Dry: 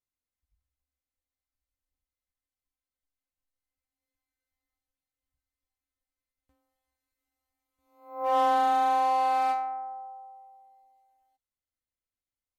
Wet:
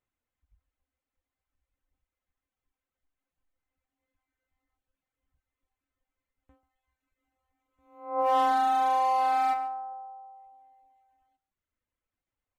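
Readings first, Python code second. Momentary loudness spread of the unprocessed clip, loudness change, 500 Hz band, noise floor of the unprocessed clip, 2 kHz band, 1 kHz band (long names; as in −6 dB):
18 LU, −0.5 dB, −0.5 dB, below −85 dBFS, 0.0 dB, 0.0 dB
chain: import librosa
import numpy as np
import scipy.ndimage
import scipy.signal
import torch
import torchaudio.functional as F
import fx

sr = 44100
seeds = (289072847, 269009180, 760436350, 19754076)

p1 = fx.wiener(x, sr, points=9)
p2 = fx.dereverb_blind(p1, sr, rt60_s=0.87)
p3 = fx.over_compress(p2, sr, threshold_db=-35.0, ratio=-1.0)
p4 = p2 + F.gain(torch.from_numpy(p3), 0.5).numpy()
y = p4 + 10.0 ** (-17.0 / 20.0) * np.pad(p4, (int(140 * sr / 1000.0), 0))[:len(p4)]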